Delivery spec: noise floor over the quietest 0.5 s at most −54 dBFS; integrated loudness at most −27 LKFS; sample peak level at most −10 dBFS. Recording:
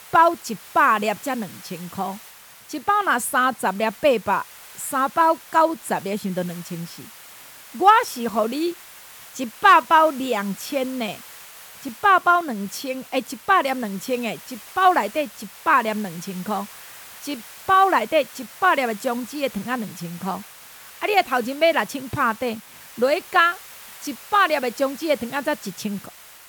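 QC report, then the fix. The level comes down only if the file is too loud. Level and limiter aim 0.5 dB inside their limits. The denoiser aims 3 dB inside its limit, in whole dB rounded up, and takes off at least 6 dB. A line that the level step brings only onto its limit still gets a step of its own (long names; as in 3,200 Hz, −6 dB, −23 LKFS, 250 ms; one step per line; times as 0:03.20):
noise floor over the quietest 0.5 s −45 dBFS: out of spec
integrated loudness −21.5 LKFS: out of spec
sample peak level −4.0 dBFS: out of spec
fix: broadband denoise 6 dB, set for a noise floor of −45 dBFS
level −6 dB
brickwall limiter −10.5 dBFS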